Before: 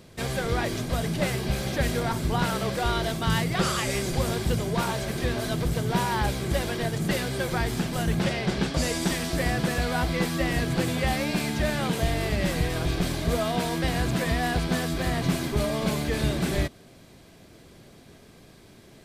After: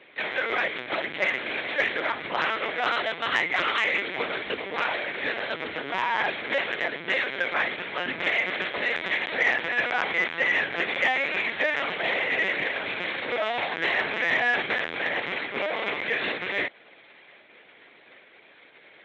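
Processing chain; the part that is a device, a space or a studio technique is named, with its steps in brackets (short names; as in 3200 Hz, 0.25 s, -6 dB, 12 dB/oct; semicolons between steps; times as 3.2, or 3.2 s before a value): bell 2100 Hz +4.5 dB 1.7 oct; 13.75–14.73 doubler 36 ms -5 dB; talking toy (LPC vocoder at 8 kHz pitch kept; HPF 450 Hz 12 dB/oct; bell 2100 Hz +8 dB 0.6 oct; soft clip -9.5 dBFS, distortion -27 dB)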